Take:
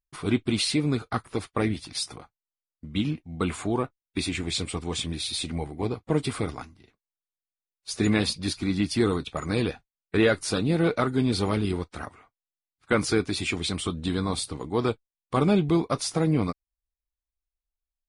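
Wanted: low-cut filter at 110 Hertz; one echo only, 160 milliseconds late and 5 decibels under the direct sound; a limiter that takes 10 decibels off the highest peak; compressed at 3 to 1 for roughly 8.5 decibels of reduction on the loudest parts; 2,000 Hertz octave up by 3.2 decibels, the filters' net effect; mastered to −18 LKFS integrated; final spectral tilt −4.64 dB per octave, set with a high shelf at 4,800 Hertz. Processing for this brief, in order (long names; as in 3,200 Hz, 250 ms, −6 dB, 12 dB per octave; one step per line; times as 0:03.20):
high-pass filter 110 Hz
parametric band 2,000 Hz +5.5 dB
high-shelf EQ 4,800 Hz −7.5 dB
downward compressor 3 to 1, threshold −28 dBFS
brickwall limiter −22 dBFS
single-tap delay 160 ms −5 dB
level +15.5 dB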